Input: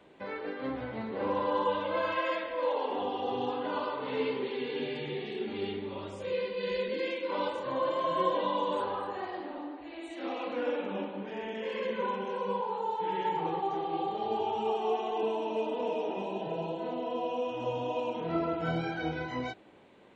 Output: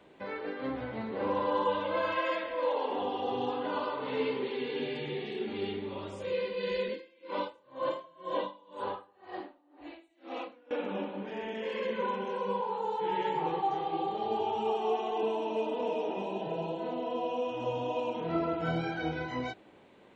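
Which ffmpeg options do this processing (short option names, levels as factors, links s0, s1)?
-filter_complex "[0:a]asettb=1/sr,asplit=3[s0][s1][s2];[s0]atrim=end=6.884[s3];[s1]atrim=start=6.88:end=10.71,asetpts=PTS-STARTPTS,afade=t=in:d=0.004:c=qsin,afade=t=out:st=3.826:d=0.004:c=qsin,aeval=exprs='val(0)*pow(10,-29*(0.5-0.5*cos(2*PI*2*n/s))/20)':c=same[s4];[s2]atrim=start=10.706[s5];[s3][s4]acrossfade=d=0.004:c1=hsin:c2=qsin[s6];[s6][s5]acrossfade=d=0.004:c1=qsin:c2=hsin,asettb=1/sr,asplit=3[s7][s8][s9];[s7]atrim=end=12.834[s10];[s8]atrim=start=12.83:end=13.93,asetpts=PTS-STARTPTS,afade=t=in:d=0.004:c=qsin,afade=t=out:st=1.096:d=0.004:c=qsin,asplit=2[s11][s12];[s12]adelay=14,volume=0.631[s13];[s11][s13]amix=inputs=2:normalize=0,atrim=end_sample=48510[s14];[s9]atrim=start=13.926[s15];[s10][s14]acrossfade=d=0.004:c1=hsin:c2=qsin[s16];[s16][s15]acrossfade=d=0.004:c1=qsin:c2=hsin"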